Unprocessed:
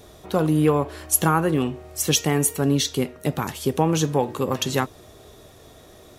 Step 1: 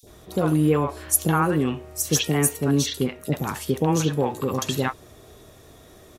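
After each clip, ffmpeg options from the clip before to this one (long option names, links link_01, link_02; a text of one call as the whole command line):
ffmpeg -i in.wav -filter_complex "[0:a]acrossover=split=680|4000[link_01][link_02][link_03];[link_01]adelay=30[link_04];[link_02]adelay=70[link_05];[link_04][link_05][link_03]amix=inputs=3:normalize=0" out.wav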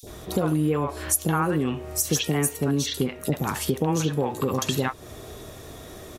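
ffmpeg -i in.wav -af "acompressor=threshold=-31dB:ratio=3,volume=7.5dB" out.wav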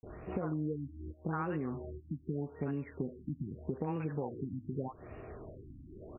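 ffmpeg -i in.wav -af "acompressor=threshold=-27dB:ratio=3,afftfilt=real='re*lt(b*sr/1024,310*pow(2900/310,0.5+0.5*sin(2*PI*0.82*pts/sr)))':imag='im*lt(b*sr/1024,310*pow(2900/310,0.5+0.5*sin(2*PI*0.82*pts/sr)))':win_size=1024:overlap=0.75,volume=-6.5dB" out.wav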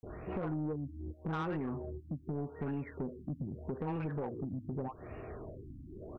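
ffmpeg -i in.wav -af "asoftclip=type=tanh:threshold=-33dB,volume=2.5dB" out.wav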